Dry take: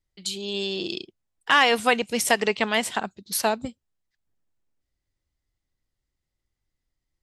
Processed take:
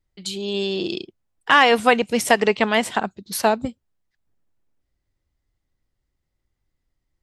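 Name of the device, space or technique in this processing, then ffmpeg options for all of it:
behind a face mask: -af "highshelf=frequency=2400:gain=-7.5,volume=6dB"

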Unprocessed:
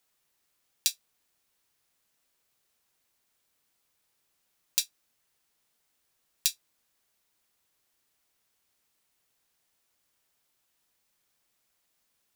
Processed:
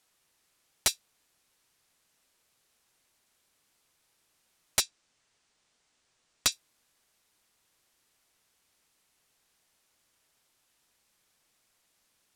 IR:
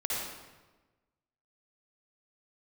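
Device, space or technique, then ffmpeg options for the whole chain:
overflowing digital effects unit: -filter_complex "[0:a]asettb=1/sr,asplit=3[link_01][link_02][link_03];[link_01]atrim=end=4.814[link_04];[link_02]atrim=start=4.81:end=6.52,asetpts=PTS-STARTPTS,afade=type=in:duration=0.004:curve=qsin,afade=type=out:start_time=1.706:duration=0.004:curve=qsin,lowpass=frequency=8500:width=0.5412,lowpass=frequency=8500:width=1.3066[link_05];[link_03]atrim=start=6.516[link_06];[link_04][link_05]acrossfade=duration=0.004:curve1=hsin:curve2=qsin[link_07];[link_07][link_06]acrossfade=duration=0.004:curve1=qsin:curve2=hsin,aeval=exprs='(mod(6.68*val(0)+1,2)-1)/6.68':channel_layout=same,lowpass=12000,volume=5dB"

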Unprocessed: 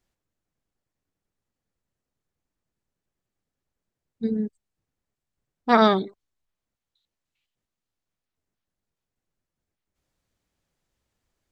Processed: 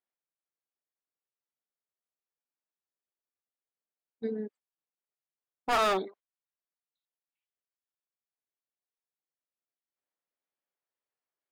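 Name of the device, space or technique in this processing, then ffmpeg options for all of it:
walkie-talkie: -af "highpass=460,lowpass=2600,asoftclip=type=hard:threshold=-24.5dB,agate=range=-14dB:threshold=-53dB:ratio=16:detection=peak,volume=1.5dB"

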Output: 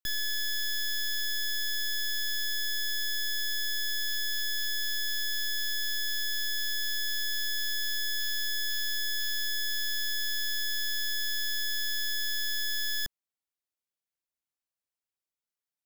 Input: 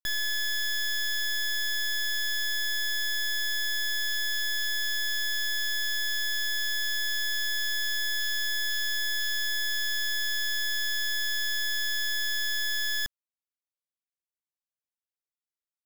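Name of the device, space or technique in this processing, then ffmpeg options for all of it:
one-band saturation: -filter_complex "[0:a]acrossover=split=500|2900[link_01][link_02][link_03];[link_02]asoftclip=type=tanh:threshold=-38.5dB[link_04];[link_01][link_04][link_03]amix=inputs=3:normalize=0"

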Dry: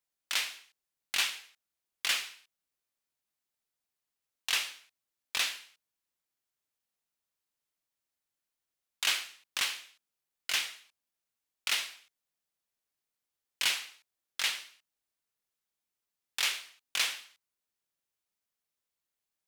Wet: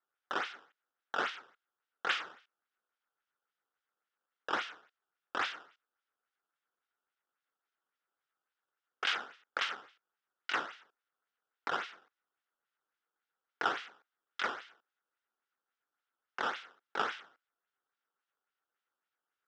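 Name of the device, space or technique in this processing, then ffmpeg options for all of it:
circuit-bent sampling toy: -filter_complex "[0:a]acrusher=samples=12:mix=1:aa=0.000001:lfo=1:lforange=19.2:lforate=3.6,highpass=510,equalizer=frequency=620:width_type=q:width=4:gain=-7,equalizer=frequency=990:width_type=q:width=4:gain=-4,equalizer=frequency=1400:width_type=q:width=4:gain=9,equalizer=frequency=2400:width_type=q:width=4:gain=-4,equalizer=frequency=4300:width_type=q:width=4:gain=-7,lowpass=frequency=4700:width=0.5412,lowpass=frequency=4700:width=1.3066,asettb=1/sr,asplit=3[link_01][link_02][link_03];[link_01]atrim=end=16.444[link_04];[link_02]atrim=start=16.44:end=17.02,asetpts=PTS-STARTPTS,afade=type=in:duration=0.004:curve=qsin,afade=type=out:start_time=0.576:duration=0.004:curve=qsin,highpass=130[link_05];[link_03]atrim=start=17.016[link_06];[link_04][link_05]acrossfade=duration=0.004:curve1=hsin:curve2=qsin[link_07];[link_07][link_06]acrossfade=duration=0.004:curve1=qsin:curve2=hsin,volume=-1.5dB"

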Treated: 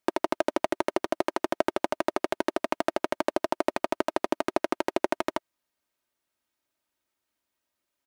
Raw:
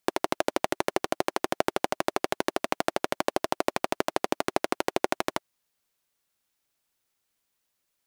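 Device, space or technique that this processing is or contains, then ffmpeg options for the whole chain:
behind a face mask: -af "highpass=frequency=71:poles=1,highshelf=frequency=2800:gain=-8,aecho=1:1:3.2:0.47"

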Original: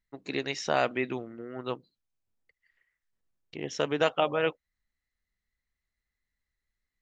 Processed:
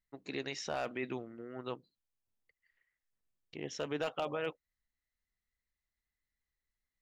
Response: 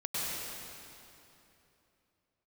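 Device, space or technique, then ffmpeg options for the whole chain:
clipper into limiter: -af "asoftclip=type=hard:threshold=-15dB,alimiter=limit=-20.5dB:level=0:latency=1:release=11,volume=-5.5dB"

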